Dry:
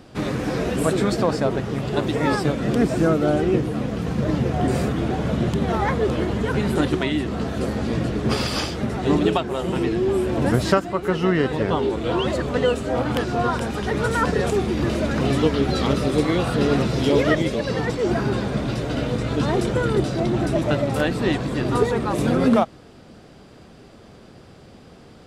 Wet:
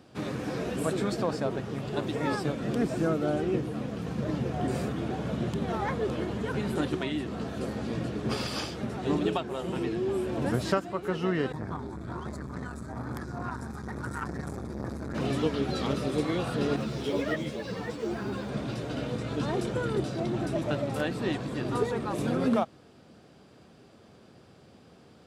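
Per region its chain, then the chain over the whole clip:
11.52–15.15 low shelf 100 Hz +10.5 dB + fixed phaser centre 1200 Hz, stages 4 + core saturation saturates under 580 Hz
16.76–18.49 G.711 law mismatch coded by mu + ensemble effect
whole clip: HPF 83 Hz; notch 2000 Hz, Q 28; gain -8.5 dB

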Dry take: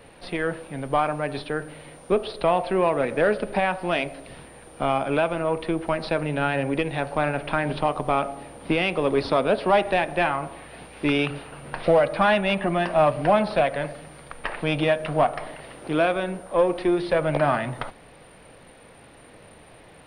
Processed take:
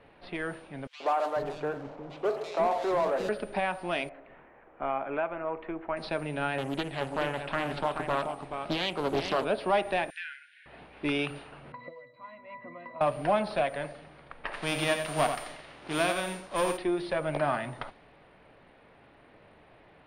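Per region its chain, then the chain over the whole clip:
0.87–3.29 median filter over 25 samples + overdrive pedal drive 20 dB, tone 1800 Hz, clips at -11 dBFS + three bands offset in time highs, mids, lows 0.13/0.49 s, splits 290/2500 Hz
4.09–5.97 LPF 2200 Hz 24 dB/oct + bell 97 Hz -11 dB 2.5 oct
6.58–9.45 echo 0.429 s -7 dB + Doppler distortion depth 0.62 ms
10.1–10.66 brick-wall FIR high-pass 1400 Hz + notch 4500 Hz, Q 24 + compressor 3:1, threshold -29 dBFS
11.72–13.01 tilt shelf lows -5.5 dB, about 1300 Hz + octave resonator B, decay 0.24 s + three-band squash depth 100%
14.52–16.76 spectral whitening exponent 0.6 + echo 87 ms -7.5 dB
whole clip: low-pass opened by the level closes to 2500 Hz, open at -20 dBFS; tone controls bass -3 dB, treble +2 dB; notch 500 Hz, Q 12; gain -6.5 dB

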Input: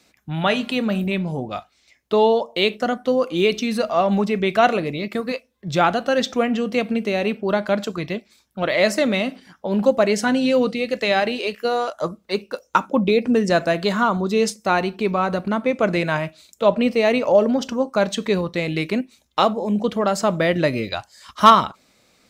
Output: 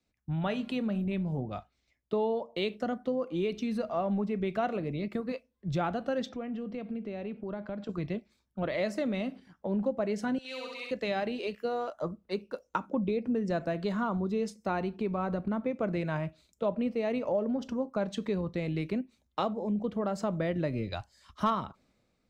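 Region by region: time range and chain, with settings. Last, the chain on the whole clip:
6.29–7.89 notch 6500 Hz, Q 11 + compressor 2.5:1, threshold -30 dBFS + air absorption 86 m
10.38–10.91 HPF 1300 Hz + flutter echo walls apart 11.2 m, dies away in 1.3 s
whole clip: tilt -2.5 dB/oct; compressor 3:1, threshold -21 dBFS; three-band expander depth 40%; gain -8.5 dB

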